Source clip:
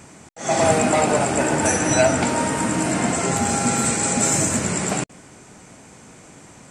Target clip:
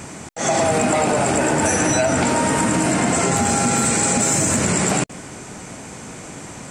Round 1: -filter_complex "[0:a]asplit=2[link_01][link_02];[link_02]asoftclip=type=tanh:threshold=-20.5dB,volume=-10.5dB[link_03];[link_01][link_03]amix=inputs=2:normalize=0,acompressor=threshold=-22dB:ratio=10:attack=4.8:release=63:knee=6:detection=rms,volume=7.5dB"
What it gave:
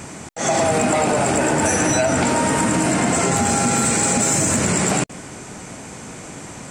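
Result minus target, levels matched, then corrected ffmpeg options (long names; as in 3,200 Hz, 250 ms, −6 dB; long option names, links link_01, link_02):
soft clipping: distortion +6 dB
-filter_complex "[0:a]asplit=2[link_01][link_02];[link_02]asoftclip=type=tanh:threshold=-14dB,volume=-10.5dB[link_03];[link_01][link_03]amix=inputs=2:normalize=0,acompressor=threshold=-22dB:ratio=10:attack=4.8:release=63:knee=6:detection=rms,volume=7.5dB"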